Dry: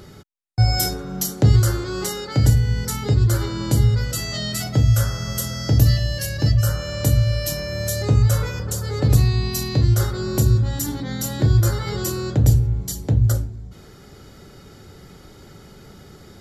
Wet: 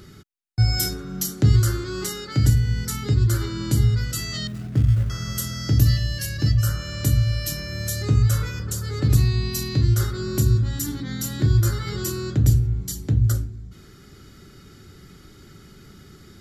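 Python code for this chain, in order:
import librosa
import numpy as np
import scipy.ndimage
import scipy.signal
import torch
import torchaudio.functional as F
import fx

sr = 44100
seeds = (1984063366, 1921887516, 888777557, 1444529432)

y = fx.median_filter(x, sr, points=41, at=(4.47, 5.1))
y = fx.band_shelf(y, sr, hz=670.0, db=-9.0, octaves=1.3)
y = y * 10.0 ** (-2.0 / 20.0)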